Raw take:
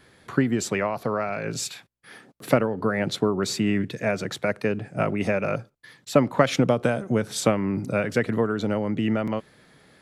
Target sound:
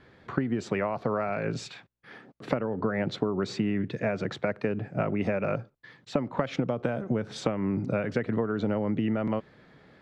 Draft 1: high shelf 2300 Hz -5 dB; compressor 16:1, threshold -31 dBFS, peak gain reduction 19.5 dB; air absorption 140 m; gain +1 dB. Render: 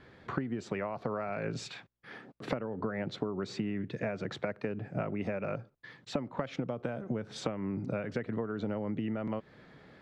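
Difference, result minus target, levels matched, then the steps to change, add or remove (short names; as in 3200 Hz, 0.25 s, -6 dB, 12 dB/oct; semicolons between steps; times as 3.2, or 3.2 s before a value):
compressor: peak gain reduction +7 dB
change: compressor 16:1, threshold -23.5 dBFS, peak gain reduction 12.5 dB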